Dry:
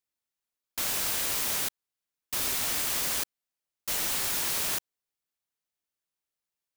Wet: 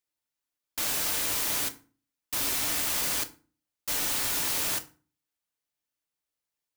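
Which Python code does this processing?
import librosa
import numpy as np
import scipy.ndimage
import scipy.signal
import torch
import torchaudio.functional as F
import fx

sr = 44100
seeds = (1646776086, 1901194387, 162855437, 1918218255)

y = fx.rev_fdn(x, sr, rt60_s=0.37, lf_ratio=1.4, hf_ratio=0.75, size_ms=20.0, drr_db=6.5)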